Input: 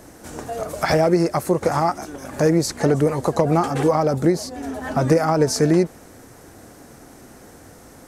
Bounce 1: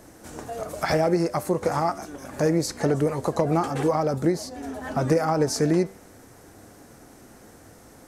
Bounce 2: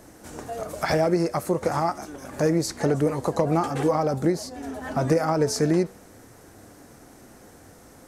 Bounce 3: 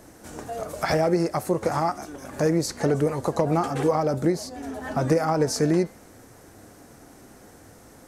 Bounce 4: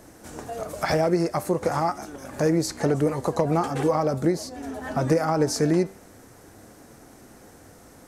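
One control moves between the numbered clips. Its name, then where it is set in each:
flanger, speed: 0.26, 1.1, 0.64, 0.43 Hertz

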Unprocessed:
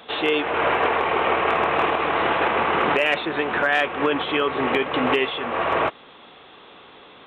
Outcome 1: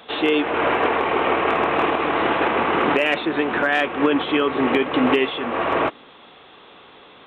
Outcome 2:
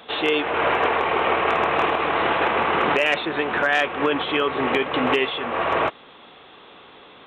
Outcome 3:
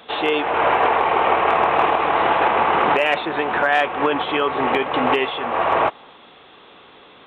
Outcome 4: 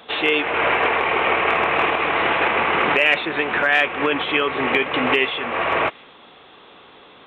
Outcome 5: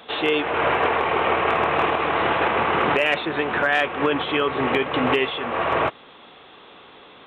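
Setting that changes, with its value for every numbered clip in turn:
dynamic equaliser, frequency: 280, 6,100, 830, 2,300, 110 Hertz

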